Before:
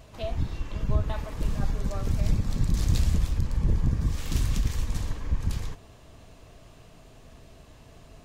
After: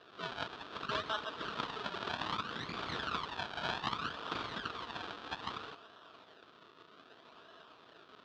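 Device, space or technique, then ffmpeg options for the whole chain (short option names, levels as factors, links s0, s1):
circuit-bent sampling toy: -af "acrusher=samples=38:mix=1:aa=0.000001:lfo=1:lforange=38:lforate=0.63,highpass=550,equalizer=f=560:t=q:w=4:g=-7,equalizer=f=810:t=q:w=4:g=-6,equalizer=f=1300:t=q:w=4:g=5,equalizer=f=2100:t=q:w=4:g=-10,equalizer=f=3500:t=q:w=4:g=5,lowpass=f=4200:w=0.5412,lowpass=f=4200:w=1.3066,volume=1.41"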